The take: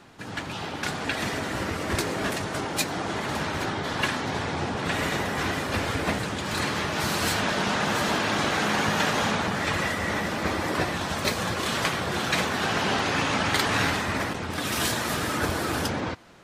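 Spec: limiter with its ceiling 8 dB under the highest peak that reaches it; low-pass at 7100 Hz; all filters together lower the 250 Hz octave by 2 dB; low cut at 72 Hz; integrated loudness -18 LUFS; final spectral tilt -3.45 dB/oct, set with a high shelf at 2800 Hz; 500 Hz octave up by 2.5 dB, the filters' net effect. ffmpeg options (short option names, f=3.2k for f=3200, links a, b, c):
-af "highpass=72,lowpass=7.1k,equalizer=f=250:t=o:g=-4,equalizer=f=500:t=o:g=4.5,highshelf=f=2.8k:g=-8,volume=11dB,alimiter=limit=-8dB:level=0:latency=1"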